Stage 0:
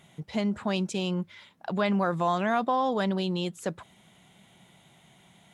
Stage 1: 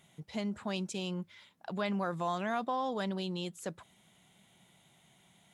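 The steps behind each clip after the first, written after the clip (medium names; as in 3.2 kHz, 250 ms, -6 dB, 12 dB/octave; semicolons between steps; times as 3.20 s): treble shelf 4.3 kHz +6 dB; trim -8 dB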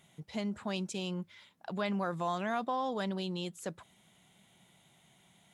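no audible change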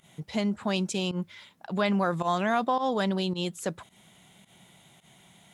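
volume shaper 108 bpm, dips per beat 1, -16 dB, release 93 ms; trim +8 dB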